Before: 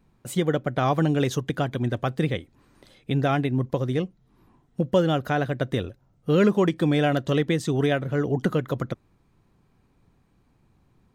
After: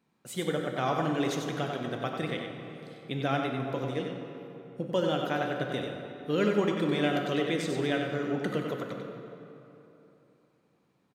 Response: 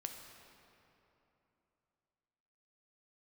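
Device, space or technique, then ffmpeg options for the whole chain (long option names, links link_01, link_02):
PA in a hall: -filter_complex "[0:a]highpass=190,equalizer=frequency=3600:width_type=o:width=2.6:gain=4,aecho=1:1:94:0.501[link_01];[1:a]atrim=start_sample=2205[link_02];[link_01][link_02]afir=irnorm=-1:irlink=0,volume=-4.5dB"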